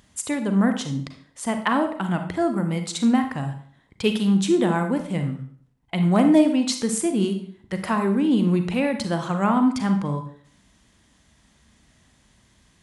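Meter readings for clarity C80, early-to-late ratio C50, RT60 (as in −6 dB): 12.5 dB, 8.5 dB, 0.55 s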